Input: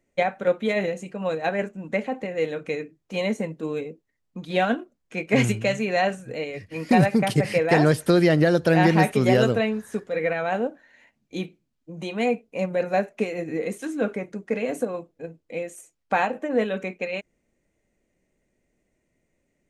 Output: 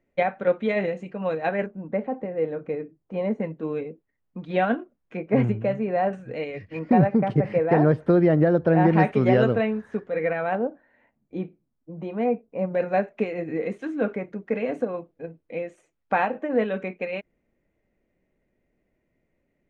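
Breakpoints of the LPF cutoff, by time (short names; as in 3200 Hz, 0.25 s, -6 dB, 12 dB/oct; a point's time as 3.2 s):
2600 Hz
from 1.66 s 1100 Hz
from 3.4 s 2100 Hz
from 5.17 s 1100 Hz
from 6.13 s 2600 Hz
from 6.79 s 1200 Hz
from 8.93 s 2100 Hz
from 10.55 s 1200 Hz
from 12.75 s 2500 Hz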